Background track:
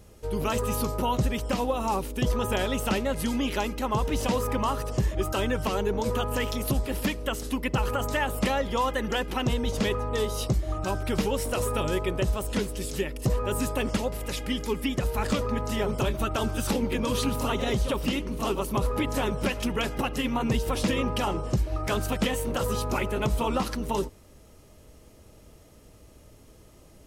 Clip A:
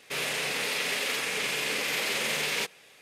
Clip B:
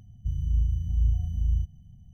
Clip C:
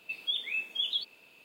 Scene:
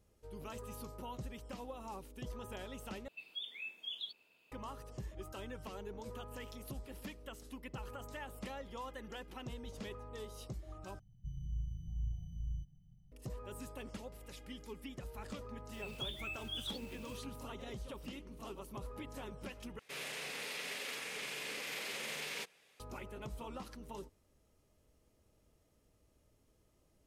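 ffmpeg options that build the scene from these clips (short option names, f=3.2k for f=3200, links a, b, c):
-filter_complex "[3:a]asplit=2[a][b];[0:a]volume=-19.5dB[c];[2:a]aecho=1:1:6.3:0.61[d];[b]aeval=exprs='val(0)+0.5*0.00891*sgn(val(0))':c=same[e];[c]asplit=4[f][g][h][i];[f]atrim=end=3.084[j];[a]atrim=end=1.44,asetpts=PTS-STARTPTS,volume=-12dB[k];[g]atrim=start=4.516:end=10.994[l];[d]atrim=end=2.13,asetpts=PTS-STARTPTS,volume=-13.5dB[m];[h]atrim=start=13.116:end=19.794[n];[1:a]atrim=end=3.01,asetpts=PTS-STARTPTS,volume=-13dB[o];[i]atrim=start=22.796[p];[e]atrim=end=1.44,asetpts=PTS-STARTPTS,volume=-12.5dB,afade=t=in:d=0.004:c=hsin,afade=t=out:st=1.436:d=0.004:c=hsin,adelay=15730[q];[j][k]acrossfade=d=0.004:c1=hsin:c2=hsin[r];[r][l]acrossfade=d=0.004:c1=hsin:c2=hsin[s];[s][m]acrossfade=d=0.004:c1=hsin:c2=hsin[t];[t][n]acrossfade=d=0.004:c1=hsin:c2=hsin[u];[u][o]acrossfade=d=0.004:c1=hsin:c2=hsin[v];[v][p]acrossfade=d=0.004:c1=hsin:c2=hsin[w];[w][q]amix=inputs=2:normalize=0"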